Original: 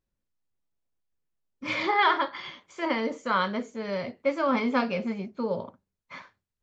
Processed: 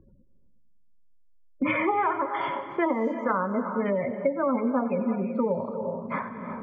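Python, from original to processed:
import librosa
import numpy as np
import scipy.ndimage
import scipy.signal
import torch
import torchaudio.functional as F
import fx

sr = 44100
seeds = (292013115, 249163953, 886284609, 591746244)

y = scipy.signal.sosfilt(scipy.signal.butter(2, 5000.0, 'lowpass', fs=sr, output='sos'), x)
y = fx.env_lowpass_down(y, sr, base_hz=1100.0, full_db=-22.5)
y = fx.spec_gate(y, sr, threshold_db=-20, keep='strong')
y = fx.rev_gated(y, sr, seeds[0], gate_ms=390, shape='rising', drr_db=12.0)
y = fx.env_lowpass(y, sr, base_hz=690.0, full_db=-24.0)
y = fx.echo_split(y, sr, split_hz=350.0, low_ms=227, high_ms=91, feedback_pct=52, wet_db=-15.5)
y = fx.band_squash(y, sr, depth_pct=100)
y = F.gain(torch.from_numpy(y), 1.5).numpy()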